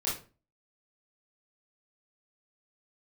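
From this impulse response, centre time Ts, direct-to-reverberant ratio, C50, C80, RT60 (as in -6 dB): 37 ms, -7.5 dB, 5.0 dB, 12.5 dB, 0.35 s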